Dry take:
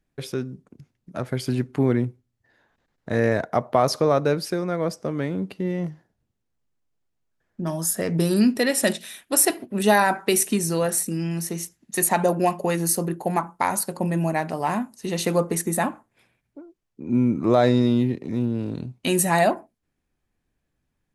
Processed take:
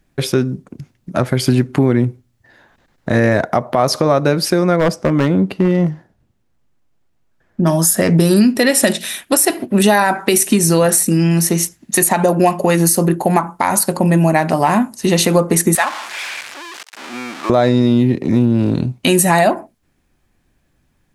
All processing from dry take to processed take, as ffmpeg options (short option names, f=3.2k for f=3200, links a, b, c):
-filter_complex "[0:a]asettb=1/sr,asplit=3[a][b][c];[a]atrim=end=4.764[d];[b]atrim=start=4.76:end=7.64,asetpts=PTS-STARTPTS,afade=t=in:d=0.004:c=qsin,afade=t=out:st=2.876:d=0.004:c=qsin,highshelf=f=3.4k:g=-7,aeval=exprs='0.119*(abs(mod(val(0)/0.119+3,4)-2)-1)':c=same[e];[c]atrim=start=7.636[f];[d][e]acrossfade=d=0.004:c1=hsin:c2=qsin[g];[g][f]acrossfade=d=0.004:c1=qsin:c2=hsin,asettb=1/sr,asplit=3[h][i][j];[h]atrim=end=15.754[k];[i]atrim=start=15.75:end=17.5,asetpts=PTS-STARTPTS,afade=t=in:d=0.004:c=qsin,afade=t=out:st=1.746:d=0.004:c=qsin,aeval=exprs='val(0)+0.5*0.0266*sgn(val(0))':c=same,adynamicsmooth=sensitivity=3:basefreq=7.1k,highpass=1.1k[l];[j]atrim=start=17.496[m];[k][l]acrossfade=d=0.004:c1=hsin:c2=qsin[n];[n][m]acrossfade=d=0.004:c1=qsin:c2=hsin,bandreject=f=450:w=12,acompressor=threshold=-23dB:ratio=6,alimiter=level_in=15.5dB:limit=-1dB:release=50:level=0:latency=1,volume=-1dB"